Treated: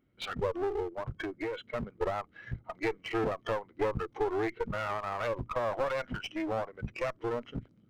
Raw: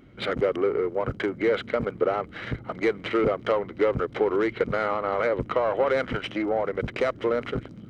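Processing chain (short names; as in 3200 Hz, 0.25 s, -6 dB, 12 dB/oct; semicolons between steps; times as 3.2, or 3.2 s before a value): spectral noise reduction 17 dB; 0.82–1.75 compressor 10:1, threshold -26 dBFS, peak gain reduction 8 dB; one-sided clip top -33 dBFS; gain -3.5 dB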